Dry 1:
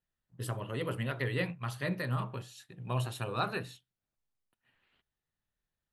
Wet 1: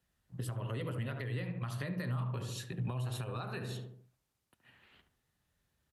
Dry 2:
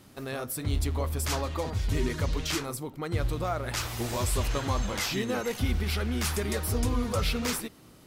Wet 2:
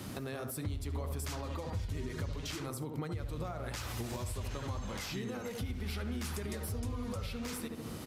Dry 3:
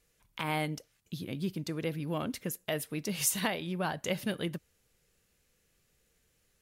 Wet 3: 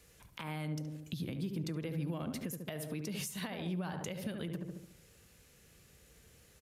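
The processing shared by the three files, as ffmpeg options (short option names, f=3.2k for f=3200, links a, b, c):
-filter_complex "[0:a]lowshelf=f=150:g=5,asplit=2[a][b];[b]adelay=72,lowpass=f=1.2k:p=1,volume=-7dB,asplit=2[c][d];[d]adelay=72,lowpass=f=1.2k:p=1,volume=0.47,asplit=2[e][f];[f]adelay=72,lowpass=f=1.2k:p=1,volume=0.47,asplit=2[g][h];[h]adelay=72,lowpass=f=1.2k:p=1,volume=0.47,asplit=2[i][j];[j]adelay=72,lowpass=f=1.2k:p=1,volume=0.47,asplit=2[k][l];[l]adelay=72,lowpass=f=1.2k:p=1,volume=0.47[m];[a][c][e][g][i][k][m]amix=inputs=7:normalize=0,acompressor=threshold=-41dB:ratio=6,alimiter=level_in=12.5dB:limit=-24dB:level=0:latency=1:release=257,volume=-12.5dB,acrossover=split=200[n][o];[o]acompressor=threshold=-50dB:ratio=2[p];[n][p]amix=inputs=2:normalize=0,aresample=32000,aresample=44100,highpass=54,volume=9.5dB"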